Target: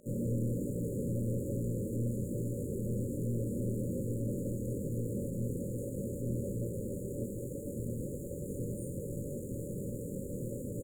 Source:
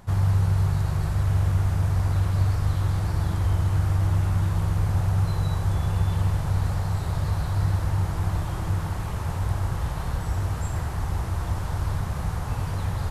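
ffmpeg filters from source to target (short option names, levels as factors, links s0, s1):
-filter_complex "[0:a]aeval=exprs='clip(val(0),-1,0.0224)':c=same,highpass=f=55:p=1,lowshelf=f=370:g=-9,bandreject=f=88.27:t=h:w=4,bandreject=f=176.54:t=h:w=4,bandreject=f=264.81:t=h:w=4,bandreject=f=353.08:t=h:w=4,bandreject=f=441.35:t=h:w=4,bandreject=f=529.62:t=h:w=4,bandreject=f=617.89:t=h:w=4,bandreject=f=706.16:t=h:w=4,bandreject=f=794.43:t=h:w=4,bandreject=f=882.7:t=h:w=4,bandreject=f=970.97:t=h:w=4,bandreject=f=1059.24:t=h:w=4,bandreject=f=1147.51:t=h:w=4,bandreject=f=1235.78:t=h:w=4,bandreject=f=1324.05:t=h:w=4,bandreject=f=1412.32:t=h:w=4,bandreject=f=1500.59:t=h:w=4,bandreject=f=1588.86:t=h:w=4,bandreject=f=1677.13:t=h:w=4,bandreject=f=1765.4:t=h:w=4,bandreject=f=1853.67:t=h:w=4,bandreject=f=1941.94:t=h:w=4,bandreject=f=2030.21:t=h:w=4,bandreject=f=2118.48:t=h:w=4,bandreject=f=2206.75:t=h:w=4,bandreject=f=2295.02:t=h:w=4,bandreject=f=2383.29:t=h:w=4,bandreject=f=2471.56:t=h:w=4,bandreject=f=2559.83:t=h:w=4,bandreject=f=2648.1:t=h:w=4,bandreject=f=2736.37:t=h:w=4,bandreject=f=2824.64:t=h:w=4,bandreject=f=2912.91:t=h:w=4,areverse,acompressor=mode=upward:threshold=0.0112:ratio=2.5,areverse,asetrate=53361,aresample=44100,flanger=delay=17.5:depth=7.9:speed=1.2,aeval=exprs='sgn(val(0))*max(abs(val(0))-0.00158,0)':c=same,asplit=2[s0][s1];[s1]highpass=f=720:p=1,volume=56.2,asoftclip=type=tanh:threshold=0.0794[s2];[s0][s2]amix=inputs=2:normalize=0,lowpass=f=1200:p=1,volume=0.501,afftfilt=real='re*(1-between(b*sr/4096,590,6700))':imag='im*(1-between(b*sr/4096,590,6700))':win_size=4096:overlap=0.75"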